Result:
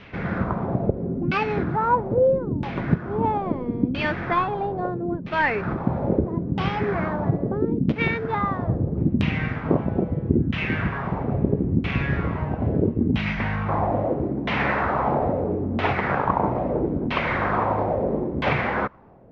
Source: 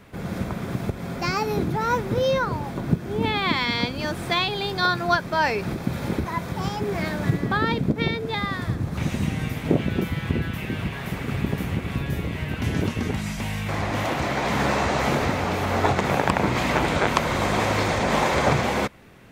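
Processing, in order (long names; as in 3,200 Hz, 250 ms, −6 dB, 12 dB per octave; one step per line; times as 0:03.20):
variable-slope delta modulation 32 kbit/s
speech leveller within 3 dB 0.5 s
auto-filter low-pass saw down 0.76 Hz 250–3,000 Hz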